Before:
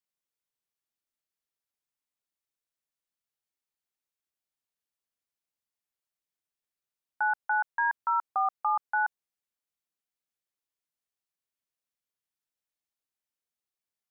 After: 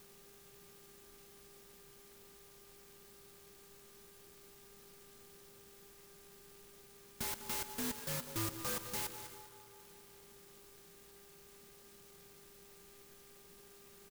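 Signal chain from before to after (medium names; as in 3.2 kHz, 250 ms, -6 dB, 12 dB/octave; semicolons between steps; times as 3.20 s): high-order bell 1.1 kHz -15 dB; upward compressor, threshold -45 dBFS; gate with hold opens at -57 dBFS; comb 5.3 ms, depth 46%; peak limiter -36.5 dBFS, peak gain reduction 5.5 dB; integer overflow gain 41 dB; tone controls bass +6 dB, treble -7 dB; on a send: band-passed feedback delay 200 ms, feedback 42%, band-pass 870 Hz, level -9 dB; on the sum: mains buzz 400 Hz, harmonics 37, -72 dBFS -5 dB/octave; Butterworth band-stop 710 Hz, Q 2.6; algorithmic reverb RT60 2.9 s, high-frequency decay 0.75×, pre-delay 45 ms, DRR 9 dB; sampling jitter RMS 0.14 ms; trim +9.5 dB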